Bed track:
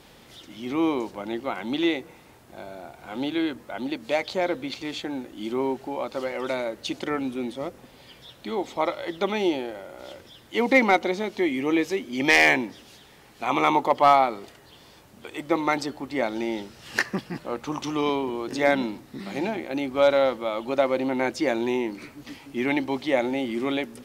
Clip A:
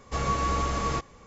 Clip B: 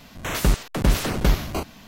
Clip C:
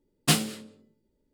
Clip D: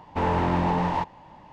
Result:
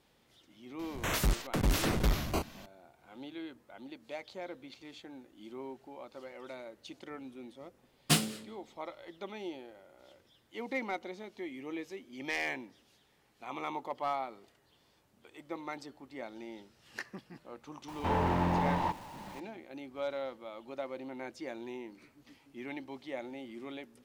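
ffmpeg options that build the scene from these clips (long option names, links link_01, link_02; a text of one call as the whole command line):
ffmpeg -i bed.wav -i cue0.wav -i cue1.wav -i cue2.wav -i cue3.wav -filter_complex "[0:a]volume=-17.5dB[link_01];[2:a]volume=18dB,asoftclip=hard,volume=-18dB[link_02];[4:a]aeval=exprs='val(0)+0.5*0.0106*sgn(val(0))':channel_layout=same[link_03];[link_02]atrim=end=1.87,asetpts=PTS-STARTPTS,volume=-5dB,afade=type=in:duration=0.004:curve=hsin,afade=type=out:start_time=1.866:duration=0.004:curve=hsin,adelay=790[link_04];[3:a]atrim=end=1.33,asetpts=PTS-STARTPTS,volume=-4.5dB,afade=type=in:duration=0.004:curve=hsin,afade=type=out:start_time=1.326:duration=0.004:curve=hsin,adelay=7820[link_05];[link_03]atrim=end=1.52,asetpts=PTS-STARTPTS,volume=-6.5dB,afade=type=in:duration=0.004:curve=hsin,afade=type=out:start_time=1.516:duration=0.004:curve=hsin,adelay=17880[link_06];[link_01][link_04][link_05][link_06]amix=inputs=4:normalize=0" out.wav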